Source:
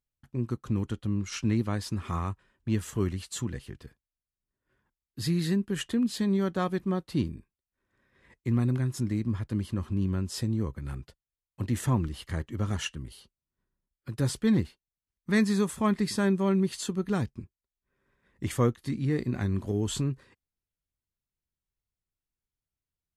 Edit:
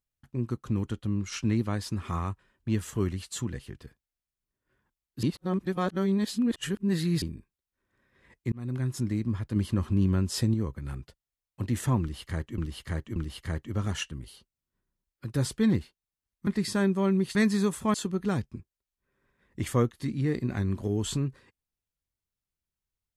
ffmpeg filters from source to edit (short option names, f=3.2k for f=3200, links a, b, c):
-filter_complex "[0:a]asplit=11[a][b][c][d][e][f][g][h][i][j][k];[a]atrim=end=5.232[l];[b]atrim=start=5.228:end=7.222,asetpts=PTS-STARTPTS,areverse[m];[c]atrim=start=7.218:end=8.52,asetpts=PTS-STARTPTS,afade=t=out:st=1.298:d=0.004:c=hsin[n];[d]atrim=start=8.52:end=9.562,asetpts=PTS-STARTPTS,afade=t=in:d=0.36[o];[e]atrim=start=9.558:end=10.542,asetpts=PTS-STARTPTS,volume=4dB[p];[f]atrim=start=10.538:end=12.582[q];[g]atrim=start=11.998:end=12.582[r];[h]atrim=start=11.998:end=15.312[s];[i]atrim=start=15.898:end=16.782[t];[j]atrim=start=15.308:end=15.902[u];[k]atrim=start=16.778[v];[l][m]acrossfade=d=0.004:c1=hsin:c2=hsin[w];[n][o]concat=n=2:v=0:a=1[x];[w][x]acrossfade=d=0.004:c1=hsin:c2=hsin[y];[y][p]acrossfade=d=0.004:c1=hsin:c2=hsin[z];[z][q]acrossfade=d=0.004:c1=hsin:c2=hsin[aa];[aa][r]acrossfade=d=0.004:c1=hsin:c2=hsin[ab];[ab][s]acrossfade=d=0.004:c1=hsin:c2=hsin[ac];[ac][t]acrossfade=d=0.004:c1=hsin:c2=hsin[ad];[ad][u]acrossfade=d=0.004:c1=hsin:c2=hsin[ae];[ae][v]acrossfade=d=0.004:c1=hsin:c2=hsin"